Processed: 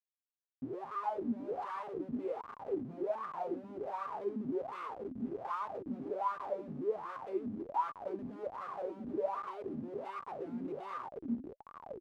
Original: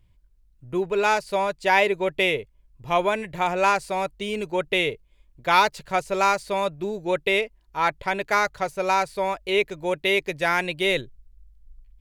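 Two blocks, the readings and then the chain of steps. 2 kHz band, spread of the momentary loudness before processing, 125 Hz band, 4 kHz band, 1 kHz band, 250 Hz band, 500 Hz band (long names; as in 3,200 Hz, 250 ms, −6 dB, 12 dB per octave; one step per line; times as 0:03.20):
−30.0 dB, 8 LU, −14.0 dB, below −30 dB, −15.0 dB, −7.5 dB, −14.5 dB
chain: noise reduction from a noise print of the clip's start 26 dB
downward compressor 4 to 1, threshold −34 dBFS, peak gain reduction 17.5 dB
wrap-around overflow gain 22.5 dB
hum with harmonics 400 Hz, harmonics 8, −51 dBFS −5 dB per octave
on a send: echo with shifted repeats 473 ms, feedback 48%, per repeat −140 Hz, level −15 dB
on the sum: comparator with hysteresis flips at −43 dBFS
LFO wah 1.3 Hz 230–1,200 Hz, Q 14
level +14 dB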